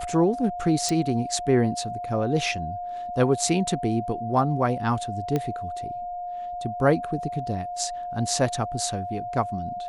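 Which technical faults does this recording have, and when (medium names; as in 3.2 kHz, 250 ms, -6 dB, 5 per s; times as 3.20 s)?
whine 710 Hz -30 dBFS
0.89 s: pop
5.36 s: pop -13 dBFS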